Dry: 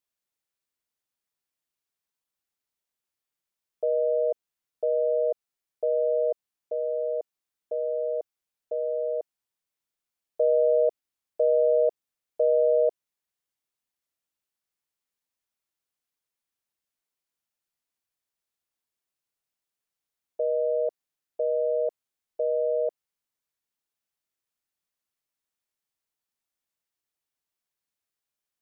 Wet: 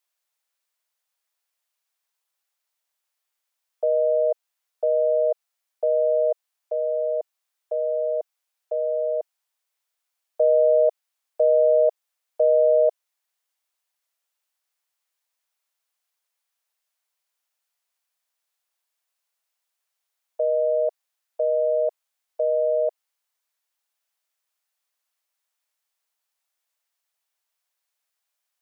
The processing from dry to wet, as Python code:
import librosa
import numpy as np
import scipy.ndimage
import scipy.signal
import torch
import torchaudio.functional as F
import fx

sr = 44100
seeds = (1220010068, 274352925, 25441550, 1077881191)

y = scipy.signal.sosfilt(scipy.signal.butter(4, 550.0, 'highpass', fs=sr, output='sos'), x)
y = F.gain(torch.from_numpy(y), 7.0).numpy()